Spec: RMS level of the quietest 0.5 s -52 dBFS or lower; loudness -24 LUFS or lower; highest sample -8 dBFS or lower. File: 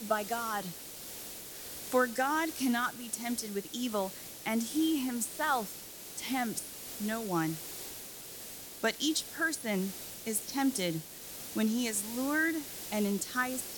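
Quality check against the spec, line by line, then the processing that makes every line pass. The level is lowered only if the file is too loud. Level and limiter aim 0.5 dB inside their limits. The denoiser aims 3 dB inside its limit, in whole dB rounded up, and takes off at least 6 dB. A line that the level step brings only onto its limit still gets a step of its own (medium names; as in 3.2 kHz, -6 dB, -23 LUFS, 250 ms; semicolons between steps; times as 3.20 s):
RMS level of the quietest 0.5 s -46 dBFS: fail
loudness -33.5 LUFS: pass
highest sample -15.5 dBFS: pass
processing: noise reduction 9 dB, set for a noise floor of -46 dBFS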